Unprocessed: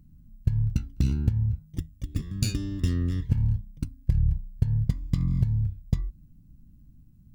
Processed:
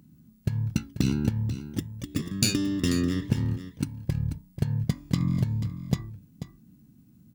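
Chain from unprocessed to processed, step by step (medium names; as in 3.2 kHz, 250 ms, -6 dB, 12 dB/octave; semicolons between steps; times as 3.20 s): high-pass 210 Hz 12 dB/octave; on a send: delay 488 ms -12 dB; on the sum: trim +8.5 dB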